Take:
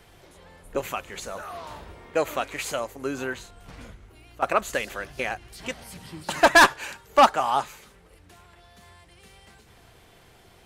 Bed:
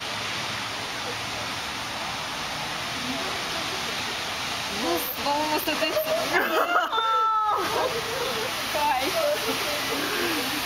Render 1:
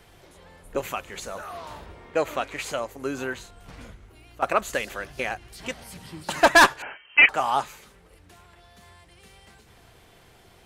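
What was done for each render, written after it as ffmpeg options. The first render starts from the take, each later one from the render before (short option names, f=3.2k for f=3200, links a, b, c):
-filter_complex "[0:a]asettb=1/sr,asplit=3[a][b][c];[a]atrim=end=1.864[d];[b]atrim=start=1.86:end=2.91,asetpts=PTS-STARTPTS,afade=t=in:d=0.004:c=qsin,afade=t=out:st=1.046:d=0.004:c=qsin,highshelf=f=8.5k:g=-8[e];[c]atrim=start=2.906[f];[d][e]acrossfade=d=0.004:c1=hsin:c2=qsin[g];[g][f]acrossfade=d=0.004:c1=qsin:c2=hsin,asettb=1/sr,asplit=3[h][i][j];[h]atrim=end=6.824[k];[i]atrim=start=6.82:end=7.29,asetpts=PTS-STARTPTS,afade=t=in:d=0.004:c=qsin,afade=t=out:st=0.466:d=0.004:c=qsin,lowpass=f=2.7k:t=q:w=0.5098,lowpass=f=2.7k:t=q:w=0.6013,lowpass=f=2.7k:t=q:w=0.9,lowpass=f=2.7k:t=q:w=2.563,afreqshift=-3200[l];[j]atrim=start=7.286[m];[k][l]acrossfade=d=0.004:c1=hsin:c2=qsin[n];[n][m]acrossfade=d=0.004:c1=qsin:c2=hsin"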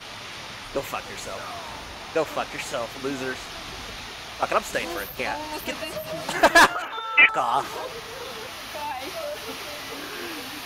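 -filter_complex "[1:a]volume=-8dB[a];[0:a][a]amix=inputs=2:normalize=0"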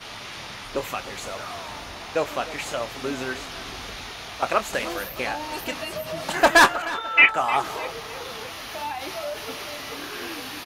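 -filter_complex "[0:a]asplit=2[a][b];[b]adelay=24,volume=-12dB[c];[a][c]amix=inputs=2:normalize=0,asplit=2[d][e];[e]adelay=306,lowpass=f=4.7k:p=1,volume=-16dB,asplit=2[f][g];[g]adelay=306,lowpass=f=4.7k:p=1,volume=0.47,asplit=2[h][i];[i]adelay=306,lowpass=f=4.7k:p=1,volume=0.47,asplit=2[j][k];[k]adelay=306,lowpass=f=4.7k:p=1,volume=0.47[l];[d][f][h][j][l]amix=inputs=5:normalize=0"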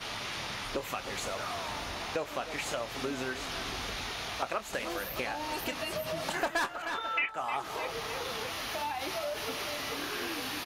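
-af "acompressor=threshold=-32dB:ratio=4"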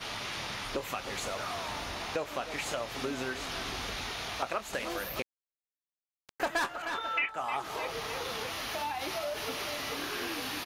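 -filter_complex "[0:a]asettb=1/sr,asplit=3[a][b][c];[a]atrim=end=5.224[d];[b]atrim=start=5.22:end=6.4,asetpts=PTS-STARTPTS,afade=t=in:d=0.004:c=qsin,afade=t=out:st=1.176:d=0.004:c=qsin,acrusher=bits=2:mix=0:aa=0.5[e];[c]atrim=start=6.396[f];[d][e]acrossfade=d=0.004:c1=hsin:c2=qsin[g];[g][f]acrossfade=d=0.004:c1=qsin:c2=hsin"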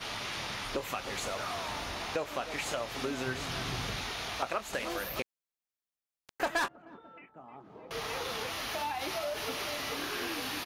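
-filter_complex "[0:a]asettb=1/sr,asplit=3[a][b][c];[a]atrim=end=3.264[d];[b]atrim=start=3.26:end=3.99,asetpts=PTS-STARTPTS,afade=t=in:d=0.004:c=qsin,afade=t=out:st=0.726:d=0.004:c=qsin,equalizer=f=130:t=o:w=0.77:g=13.5[e];[c]atrim=start=3.986[f];[d][e]acrossfade=d=0.004:c1=hsin:c2=qsin[g];[g][f]acrossfade=d=0.004:c1=qsin:c2=hsin,asettb=1/sr,asplit=3[h][i][j];[h]atrim=end=6.684[k];[i]atrim=start=6.68:end=7.91,asetpts=PTS-STARTPTS,afade=t=in:d=0.004:c=qsin,afade=t=out:st=1.226:d=0.004:c=qsin,bandpass=f=200:t=q:w=1.7[l];[j]atrim=start=7.906[m];[k][l]acrossfade=d=0.004:c1=hsin:c2=qsin[n];[n][m]acrossfade=d=0.004:c1=qsin:c2=hsin"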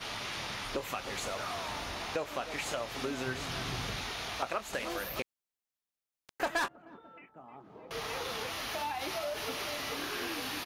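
-af "volume=-1dB"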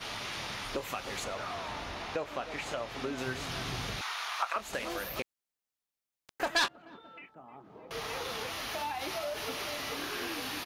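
-filter_complex "[0:a]asettb=1/sr,asplit=3[a][b][c];[a]atrim=end=1.244[d];[b]atrim=start=1.24:end=3.18,asetpts=PTS-STARTPTS,afade=t=in:d=0.004:c=qsin,afade=t=out:st=1.936:d=0.004:c=qsin,lowpass=f=3.7k:p=1[e];[c]atrim=start=3.176[f];[d][e]acrossfade=d=0.004:c1=hsin:c2=qsin[g];[g][f]acrossfade=d=0.004:c1=qsin:c2=hsin,asettb=1/sr,asplit=3[h][i][j];[h]atrim=end=4.014[k];[i]atrim=start=4.01:end=4.56,asetpts=PTS-STARTPTS,afade=t=in:d=0.004:c=qsin,afade=t=out:st=0.546:d=0.004:c=qsin,highpass=f=1.1k:t=q:w=2.2[l];[j]atrim=start=4.556[m];[k][l]acrossfade=d=0.004:c1=hsin:c2=qsin[n];[n][m]acrossfade=d=0.004:c1=qsin:c2=hsin,asettb=1/sr,asplit=3[o][p][q];[o]atrim=end=6.564[r];[p]atrim=start=6.56:end=7.35,asetpts=PTS-STARTPTS,afade=t=in:d=0.004:c=qsin,afade=t=out:st=0.786:d=0.004:c=qsin,equalizer=f=4k:w=0.89:g=12.5[s];[q]atrim=start=7.346[t];[r][s]acrossfade=d=0.004:c1=hsin:c2=qsin[u];[u][t]acrossfade=d=0.004:c1=qsin:c2=hsin"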